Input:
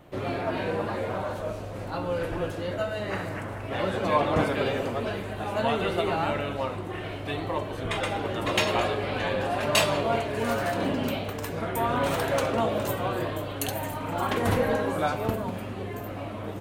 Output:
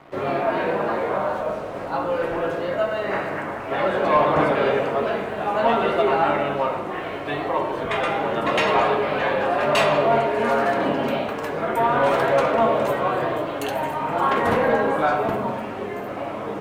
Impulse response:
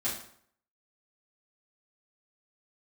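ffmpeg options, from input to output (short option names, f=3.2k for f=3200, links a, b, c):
-filter_complex "[0:a]acrusher=bits=7:mix=0:aa=0.5,asplit=2[a][b];[b]highpass=120,lowpass=2.4k[c];[1:a]atrim=start_sample=2205,asetrate=26460,aresample=44100[d];[c][d]afir=irnorm=-1:irlink=0,volume=-9dB[e];[a][e]amix=inputs=2:normalize=0,asplit=2[f][g];[g]highpass=f=720:p=1,volume=12dB,asoftclip=type=tanh:threshold=-6dB[h];[f][h]amix=inputs=2:normalize=0,lowpass=f=1.8k:p=1,volume=-6dB"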